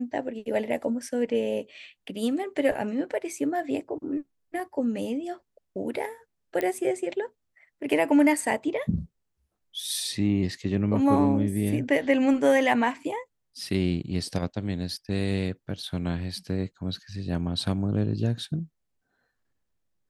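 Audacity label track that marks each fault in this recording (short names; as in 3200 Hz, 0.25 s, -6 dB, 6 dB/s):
6.610000	6.610000	pop -15 dBFS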